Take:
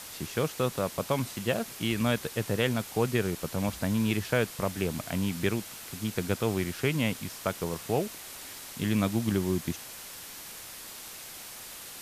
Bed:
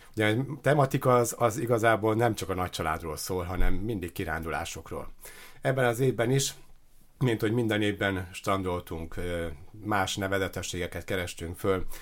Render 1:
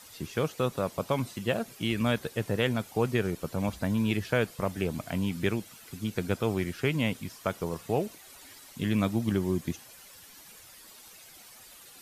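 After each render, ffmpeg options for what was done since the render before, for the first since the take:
-af "afftdn=nr=11:nf=-44"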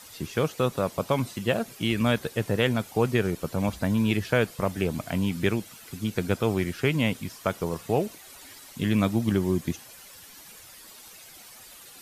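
-af "volume=1.5"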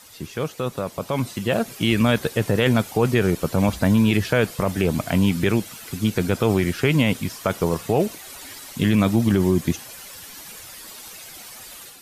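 -af "alimiter=limit=0.15:level=0:latency=1:release=16,dynaudnorm=f=910:g=3:m=2.51"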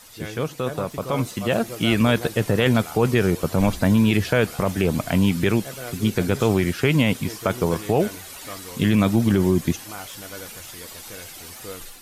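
-filter_complex "[1:a]volume=0.299[s0];[0:a][s0]amix=inputs=2:normalize=0"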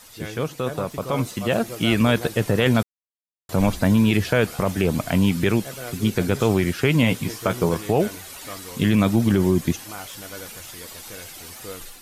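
-filter_complex "[0:a]asettb=1/sr,asplit=3[s0][s1][s2];[s0]atrim=end=7.014[s3];[s1]atrim=start=7.01:end=7.69,asetpts=PTS-STARTPTS,afade=t=in:d=0.004:c=qsin,afade=t=out:st=0.676:d=0.004:c=qsin,asplit=2[s4][s5];[s5]adelay=17,volume=0.398[s6];[s4][s6]amix=inputs=2:normalize=0,atrim=end_sample=29988[s7];[s2]atrim=start=7.686[s8];[s3][s7]acrossfade=d=0.004:c1=hsin:c2=qsin[s9];[s9][s8]acrossfade=d=0.004:c1=qsin:c2=hsin,asplit=3[s10][s11][s12];[s10]atrim=end=2.83,asetpts=PTS-STARTPTS,afade=t=out:st=2.826:d=0.004:c=hsin[s13];[s11]atrim=start=2.83:end=3.49,asetpts=PTS-STARTPTS,volume=0[s14];[s12]atrim=start=3.49,asetpts=PTS-STARTPTS,afade=t=in:d=0.004:c=hsin[s15];[s13][s14][s15]concat=n=3:v=0:a=1"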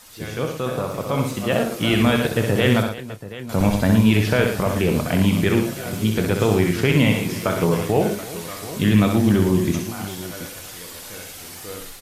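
-filter_complex "[0:a]asplit=2[s0][s1];[s1]adelay=29,volume=0.251[s2];[s0][s2]amix=inputs=2:normalize=0,aecho=1:1:64|113|334|729:0.531|0.355|0.15|0.178"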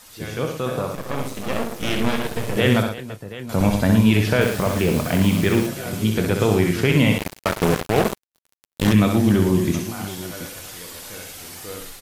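-filter_complex "[0:a]asettb=1/sr,asplit=3[s0][s1][s2];[s0]atrim=end=0.954[s3];[s1]atrim=start=0.95:end=2.57,asetpts=PTS-STARTPTS,afade=t=in:d=0.004:c=qsin,afade=t=out:st=1.616:d=0.004:c=qsin,aeval=exprs='max(val(0),0)':c=same[s4];[s2]atrim=start=2.566[s5];[s3][s4]acrossfade=d=0.004:c1=hsin:c2=qsin[s6];[s6][s5]acrossfade=d=0.004:c1=qsin:c2=hsin,asettb=1/sr,asplit=3[s7][s8][s9];[s7]atrim=end=4.414[s10];[s8]atrim=start=4.41:end=5.67,asetpts=PTS-STARTPTS,afade=t=in:d=0.004:c=qsin,afade=t=out:st=1.256:d=0.004:c=qsin,acrusher=bits=4:mix=0:aa=0.5[s11];[s9]atrim=start=5.666[s12];[s10][s11]acrossfade=d=0.004:c1=hsin:c2=qsin[s13];[s13][s12]acrossfade=d=0.004:c1=qsin:c2=hsin,asettb=1/sr,asplit=3[s14][s15][s16];[s14]atrim=end=7.184[s17];[s15]atrim=start=7.18:end=8.93,asetpts=PTS-STARTPTS,afade=t=in:d=0.004:c=qsin,afade=t=out:st=1.746:d=0.004:c=qsin,acrusher=bits=2:mix=0:aa=0.5[s18];[s16]atrim=start=8.926[s19];[s17][s18]acrossfade=d=0.004:c1=hsin:c2=qsin[s20];[s20][s19]acrossfade=d=0.004:c1=qsin:c2=hsin"

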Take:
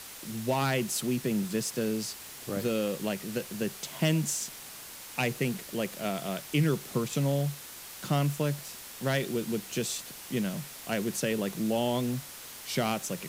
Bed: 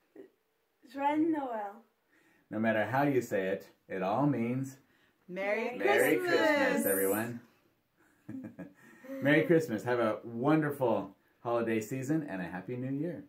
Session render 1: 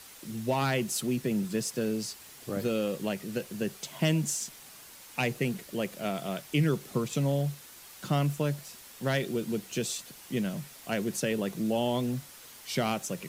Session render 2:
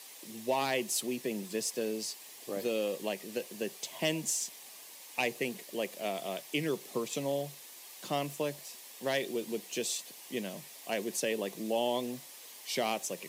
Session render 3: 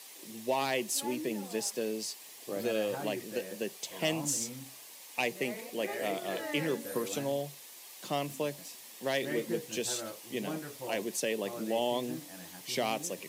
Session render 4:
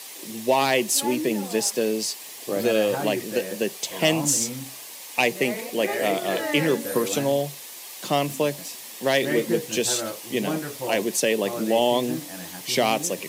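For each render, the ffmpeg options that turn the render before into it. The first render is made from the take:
-af "afftdn=nr=6:nf=-45"
-af "highpass=360,equalizer=f=1400:t=o:w=0.32:g=-13"
-filter_complex "[1:a]volume=0.251[s0];[0:a][s0]amix=inputs=2:normalize=0"
-af "volume=3.35"

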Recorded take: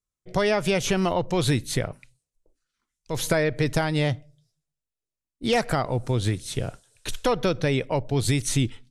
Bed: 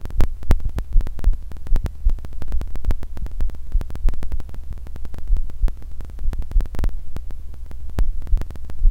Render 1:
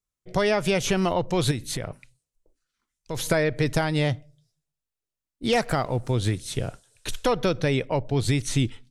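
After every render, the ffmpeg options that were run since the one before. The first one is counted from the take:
-filter_complex "[0:a]asettb=1/sr,asplit=3[s0][s1][s2];[s0]atrim=end=1.514[s3];[s1]atrim=start=1.51:end=3.26,asetpts=PTS-STARTPTS,afade=t=in:d=0.004:c=qsin,afade=t=out:st=1.746:d=0.004:c=qsin,acompressor=threshold=0.0562:ratio=6:attack=3.2:release=140:knee=1:detection=peak[s4];[s2]atrim=start=3.256[s5];[s3][s4]acrossfade=d=0.004:c1=hsin:c2=qsin[s6];[s6][s5]acrossfade=d=0.004:c1=qsin:c2=hsin,asettb=1/sr,asplit=3[s7][s8][s9];[s7]atrim=end=5.634[s10];[s8]atrim=start=5.63:end=6.11,asetpts=PTS-STARTPTS,afade=t=in:d=0.004:c=qsin,afade=t=out:st=0.476:d=0.004:c=qsin,aeval=exprs='sgn(val(0))*max(abs(val(0))-0.00282,0)':c=same[s11];[s9]atrim=start=6.106[s12];[s10][s11]acrossfade=d=0.004:c1=hsin:c2=qsin[s13];[s13][s12]acrossfade=d=0.004:c1=qsin:c2=hsin,asettb=1/sr,asplit=3[s14][s15][s16];[s14]atrim=end=7.824[s17];[s15]atrim=start=7.82:end=8.57,asetpts=PTS-STARTPTS,afade=t=in:d=0.004:c=qsin,afade=t=out:st=0.746:d=0.004:c=qsin,highshelf=f=8300:g=-9.5[s18];[s16]atrim=start=8.566[s19];[s17][s18]acrossfade=d=0.004:c1=hsin:c2=qsin[s20];[s20][s19]acrossfade=d=0.004:c1=qsin:c2=hsin"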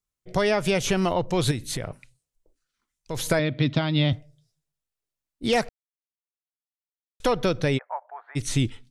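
-filter_complex "[0:a]asettb=1/sr,asplit=3[s0][s1][s2];[s0]atrim=end=3.394[s3];[s1]atrim=start=3.39:end=4.13,asetpts=PTS-STARTPTS,afade=t=in:d=0.004:c=qsin,afade=t=out:st=0.736:d=0.004:c=qsin,highpass=100,equalizer=f=140:t=q:w=4:g=4,equalizer=f=260:t=q:w=4:g=8,equalizer=f=440:t=q:w=4:g=-9,equalizer=f=830:t=q:w=4:g=-6,equalizer=f=1700:t=q:w=4:g=-7,equalizer=f=3500:t=q:w=4:g=9,lowpass=f=4200:w=0.5412,lowpass=f=4200:w=1.3066[s4];[s2]atrim=start=4.126[s5];[s3][s4]acrossfade=d=0.004:c1=hsin:c2=qsin[s6];[s6][s5]acrossfade=d=0.004:c1=qsin:c2=hsin,asplit=3[s7][s8][s9];[s7]afade=t=out:st=7.77:d=0.02[s10];[s8]asuperpass=centerf=1100:order=8:qfactor=1.1,afade=t=in:st=7.77:d=0.02,afade=t=out:st=8.35:d=0.02[s11];[s9]afade=t=in:st=8.35:d=0.02[s12];[s10][s11][s12]amix=inputs=3:normalize=0,asplit=3[s13][s14][s15];[s13]atrim=end=5.69,asetpts=PTS-STARTPTS,afade=t=out:st=5.686:d=0.004:c=hsin[s16];[s14]atrim=start=5.69:end=7.2,asetpts=PTS-STARTPTS,volume=0[s17];[s15]atrim=start=7.2,asetpts=PTS-STARTPTS,afade=t=in:d=0.004:c=hsin[s18];[s16][s17][s18]concat=n=3:v=0:a=1"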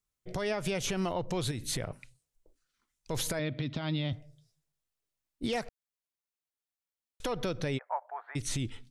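-af "acompressor=threshold=0.0708:ratio=6,alimiter=limit=0.0708:level=0:latency=1:release=227"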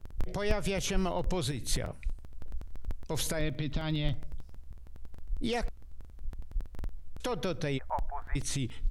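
-filter_complex "[1:a]volume=0.15[s0];[0:a][s0]amix=inputs=2:normalize=0"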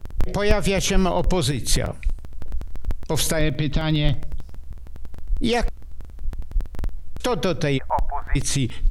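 -af "volume=3.55"

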